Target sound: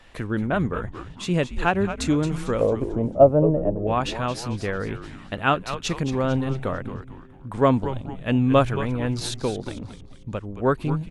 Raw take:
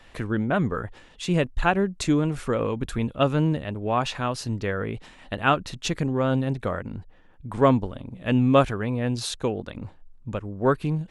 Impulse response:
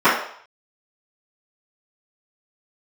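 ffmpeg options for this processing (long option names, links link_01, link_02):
-filter_complex "[0:a]asettb=1/sr,asplit=3[link_01][link_02][link_03];[link_01]atrim=end=2.614[link_04];[link_02]atrim=start=2.61:end=3.87,asetpts=PTS-STARTPTS,afade=type=in:duration=0.004:curve=qsin,afade=type=out:start_time=1.256:duration=0.004:curve=qsin,lowpass=frequency=630:width_type=q:width=4.9[link_05];[link_03]atrim=start=3.866[link_06];[link_04][link_05]acrossfade=duration=0.004:curve1=hsin:curve2=qsin[link_07];[link_07][link_06]acrossfade=duration=0.004:curve1=qsin:curve2=hsin,asplit=6[link_08][link_09][link_10][link_11][link_12][link_13];[link_09]adelay=223,afreqshift=-130,volume=-10.5dB[link_14];[link_10]adelay=446,afreqshift=-260,volume=-17.4dB[link_15];[link_11]adelay=669,afreqshift=-390,volume=-24.4dB[link_16];[link_12]adelay=892,afreqshift=-520,volume=-31.3dB[link_17];[link_13]adelay=1115,afreqshift=-650,volume=-38.2dB[link_18];[link_08][link_14][link_15][link_16][link_17][link_18]amix=inputs=6:normalize=0"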